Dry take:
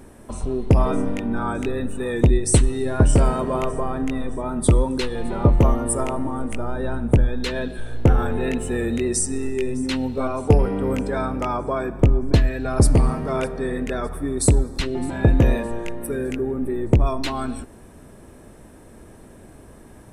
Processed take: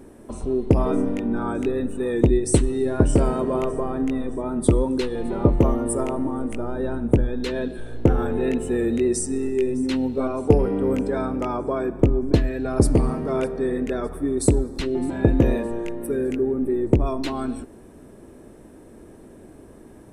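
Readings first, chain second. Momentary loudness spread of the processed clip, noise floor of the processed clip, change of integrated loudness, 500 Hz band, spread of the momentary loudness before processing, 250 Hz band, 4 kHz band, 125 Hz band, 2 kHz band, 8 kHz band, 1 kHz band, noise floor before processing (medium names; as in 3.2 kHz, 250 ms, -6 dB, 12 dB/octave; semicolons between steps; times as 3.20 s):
8 LU, -46 dBFS, -1.0 dB, +1.5 dB, 10 LU, +1.5 dB, -5.0 dB, -4.0 dB, -4.5 dB, -5.0 dB, -3.5 dB, -45 dBFS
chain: peaking EQ 340 Hz +8.5 dB 1.5 oct; trim -5 dB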